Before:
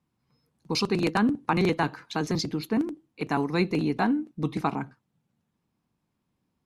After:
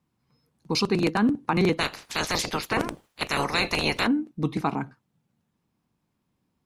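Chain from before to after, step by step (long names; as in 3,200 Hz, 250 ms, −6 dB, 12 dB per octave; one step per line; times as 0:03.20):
0:01.79–0:04.06: ceiling on every frequency bin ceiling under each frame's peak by 29 dB
brickwall limiter −14 dBFS, peak gain reduction 5 dB
level +2 dB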